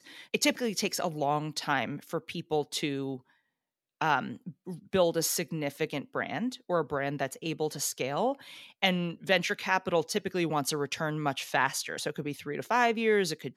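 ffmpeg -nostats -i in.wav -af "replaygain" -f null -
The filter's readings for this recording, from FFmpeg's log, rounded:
track_gain = +9.3 dB
track_peak = 0.203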